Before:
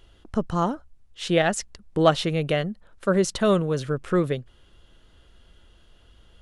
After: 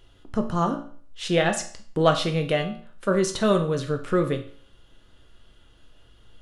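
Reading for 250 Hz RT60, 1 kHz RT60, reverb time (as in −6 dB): 0.50 s, 0.50 s, 0.50 s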